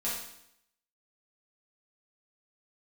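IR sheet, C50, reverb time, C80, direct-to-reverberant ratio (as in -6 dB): 1.5 dB, 0.75 s, 5.5 dB, -9.0 dB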